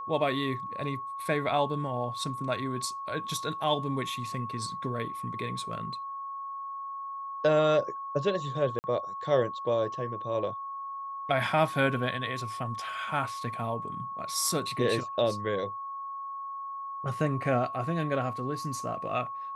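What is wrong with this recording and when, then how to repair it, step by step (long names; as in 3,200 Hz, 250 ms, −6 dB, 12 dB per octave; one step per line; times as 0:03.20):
whistle 1,100 Hz −35 dBFS
0:08.79–0:08.84: drop-out 49 ms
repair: notch filter 1,100 Hz, Q 30
repair the gap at 0:08.79, 49 ms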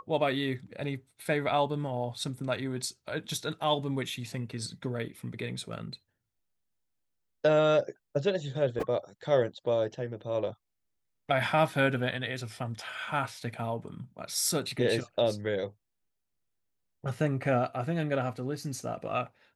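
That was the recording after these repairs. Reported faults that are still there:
none of them is left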